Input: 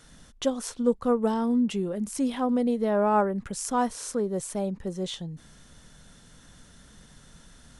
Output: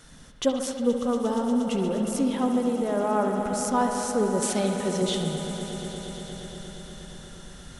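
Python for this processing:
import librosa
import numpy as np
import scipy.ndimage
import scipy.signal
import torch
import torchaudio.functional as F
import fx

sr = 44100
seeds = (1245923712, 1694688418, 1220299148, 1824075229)

p1 = x + fx.echo_bbd(x, sr, ms=71, stages=2048, feedback_pct=83, wet_db=-9.0, dry=0)
p2 = fx.rider(p1, sr, range_db=5, speed_s=0.5)
p3 = fx.weighting(p2, sr, curve='D', at=(4.42, 5.02))
y = fx.echo_swell(p3, sr, ms=118, loudest=5, wet_db=-16)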